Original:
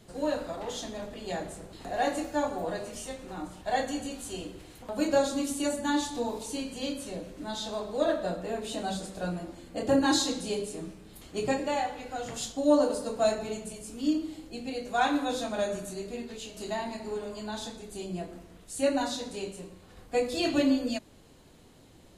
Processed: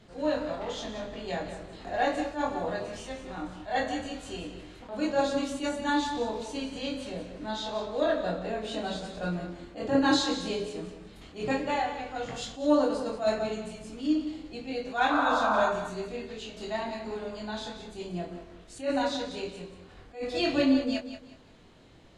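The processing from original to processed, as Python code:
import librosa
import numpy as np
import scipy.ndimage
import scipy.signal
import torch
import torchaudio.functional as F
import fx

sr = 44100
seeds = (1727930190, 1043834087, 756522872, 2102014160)

p1 = fx.tilt_shelf(x, sr, db=-5.5, hz=1300.0)
p2 = fx.spec_paint(p1, sr, seeds[0], shape='noise', start_s=15.1, length_s=0.6, low_hz=580.0, high_hz=1600.0, level_db=-30.0)
p3 = fx.spacing_loss(p2, sr, db_at_10k=25)
p4 = fx.doubler(p3, sr, ms=23.0, db=-5.5)
p5 = p4 + fx.echo_feedback(p4, sr, ms=182, feedback_pct=27, wet_db=-11.0, dry=0)
p6 = fx.attack_slew(p5, sr, db_per_s=180.0)
y = p6 * librosa.db_to_amplitude(4.5)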